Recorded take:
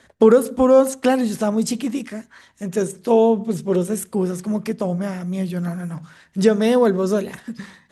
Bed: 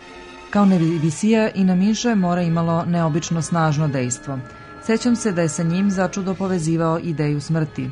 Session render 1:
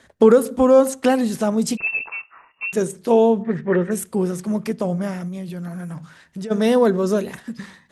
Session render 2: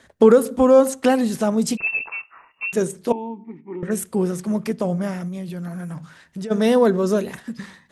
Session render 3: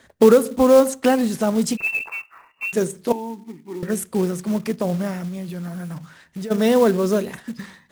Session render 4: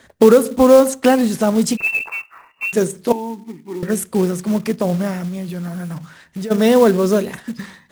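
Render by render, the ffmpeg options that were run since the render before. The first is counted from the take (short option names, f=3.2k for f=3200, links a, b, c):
-filter_complex "[0:a]asettb=1/sr,asplit=3[a][b][c];[a]atrim=end=1.774[d];[b]atrim=start=1.77:end=2.73,asetpts=PTS-STARTPTS,afade=t=in:d=0.004:c=qsin,afade=t=out:st=0.956:d=0.004:c=qsin,lowpass=f=2.5k:t=q:w=0.5098,lowpass=f=2.5k:t=q:w=0.6013,lowpass=f=2.5k:t=q:w=0.9,lowpass=f=2.5k:t=q:w=2.563,afreqshift=-2900[e];[c]atrim=start=2.726[f];[d][e]acrossfade=d=0.004:c1=hsin:c2=qsin[g];[g][f]acrossfade=d=0.004:c1=qsin:c2=hsin,asplit=3[h][i][j];[h]afade=t=out:st=3.42:d=0.02[k];[i]lowpass=f=1.8k:t=q:w=10,afade=t=in:st=3.42:d=0.02,afade=t=out:st=3.9:d=0.02[l];[j]afade=t=in:st=3.9:d=0.02[m];[k][l][m]amix=inputs=3:normalize=0,asplit=3[n][o][p];[n]afade=t=out:st=5.27:d=0.02[q];[o]acompressor=threshold=-27dB:ratio=10:attack=3.2:release=140:knee=1:detection=peak,afade=t=in:st=5.27:d=0.02,afade=t=out:st=6.5:d=0.02[r];[p]afade=t=in:st=6.5:d=0.02[s];[q][r][s]amix=inputs=3:normalize=0"
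-filter_complex "[0:a]asettb=1/sr,asplit=3[a][b][c];[a]atrim=end=3.124[d];[b]atrim=start=3.12:end=3.83,asetpts=PTS-STARTPTS,afade=t=in:d=0.004:c=qsin,afade=t=out:st=0.706:d=0.004:c=qsin,asplit=3[e][f][g];[e]bandpass=f=300:t=q:w=8,volume=0dB[h];[f]bandpass=f=870:t=q:w=8,volume=-6dB[i];[g]bandpass=f=2.24k:t=q:w=8,volume=-9dB[j];[h][i][j]amix=inputs=3:normalize=0[k];[c]atrim=start=3.826[l];[d][k]acrossfade=d=0.004:c1=hsin:c2=qsin[m];[m][l]acrossfade=d=0.004:c1=qsin:c2=hsin"
-af "acrusher=bits=5:mode=log:mix=0:aa=0.000001"
-af "volume=4dB,alimiter=limit=-1dB:level=0:latency=1"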